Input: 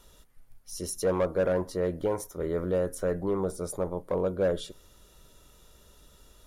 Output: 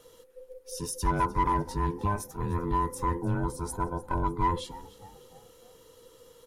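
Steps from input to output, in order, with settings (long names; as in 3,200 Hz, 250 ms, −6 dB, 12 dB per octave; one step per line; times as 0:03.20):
frequency inversion band by band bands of 500 Hz
on a send: echo with shifted repeats 302 ms, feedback 46%, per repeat −66 Hz, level −19 dB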